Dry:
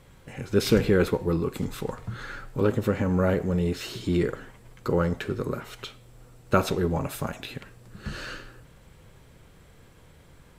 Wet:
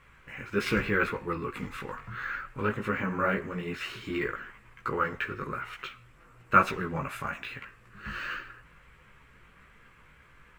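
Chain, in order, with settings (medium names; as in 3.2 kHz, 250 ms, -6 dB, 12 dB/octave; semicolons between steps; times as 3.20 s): chorus voices 6, 1.3 Hz, delay 17 ms, depth 3 ms; high-order bell 1.7 kHz +13.5 dB; decimation joined by straight lines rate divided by 2×; trim -5.5 dB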